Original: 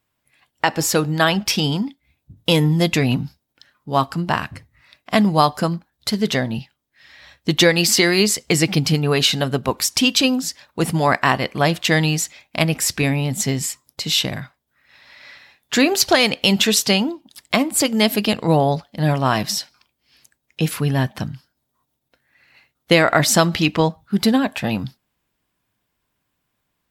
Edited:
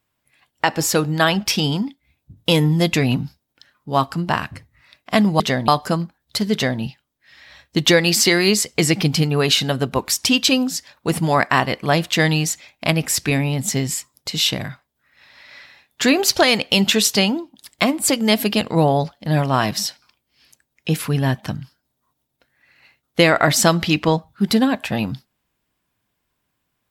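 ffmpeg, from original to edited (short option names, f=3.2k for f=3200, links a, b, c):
-filter_complex "[0:a]asplit=3[a][b][c];[a]atrim=end=5.402[d];[b]atrim=start=6.248:end=6.532[e];[c]atrim=start=5.398[f];[d][e]acrossfade=d=0.004:c1=hsin:c2=hsin[g];[g][f]acrossfade=d=0.004:c1=hsin:c2=hsin"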